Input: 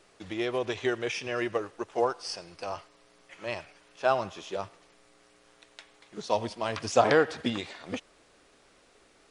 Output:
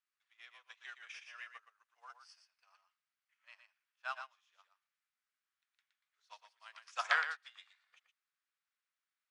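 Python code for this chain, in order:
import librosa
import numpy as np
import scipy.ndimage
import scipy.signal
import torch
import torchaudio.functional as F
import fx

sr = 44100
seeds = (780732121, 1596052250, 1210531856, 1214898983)

y = scipy.signal.sosfilt(scipy.signal.butter(4, 1300.0, 'highpass', fs=sr, output='sos'), x)
y = fx.high_shelf(y, sr, hz=2400.0, db=-9.0)
y = y + 10.0 ** (-3.5 / 20.0) * np.pad(y, (int(118 * sr / 1000.0), 0))[:len(y)]
y = fx.upward_expand(y, sr, threshold_db=-49.0, expansion=2.5)
y = y * librosa.db_to_amplitude(3.0)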